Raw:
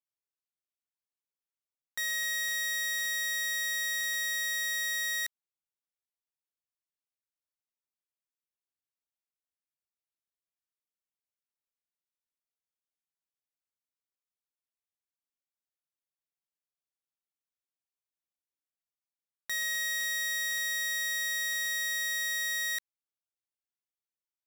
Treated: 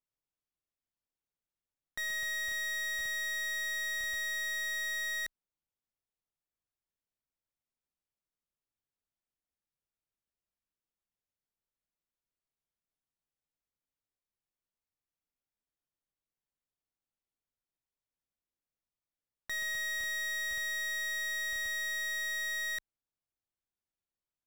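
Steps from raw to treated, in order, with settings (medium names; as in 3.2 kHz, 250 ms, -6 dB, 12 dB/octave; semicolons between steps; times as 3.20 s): tilt EQ -2.5 dB/octave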